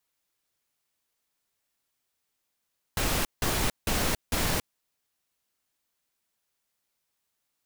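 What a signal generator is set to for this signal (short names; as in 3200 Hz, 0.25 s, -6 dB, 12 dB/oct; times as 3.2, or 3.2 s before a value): noise bursts pink, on 0.28 s, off 0.17 s, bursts 4, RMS -26.5 dBFS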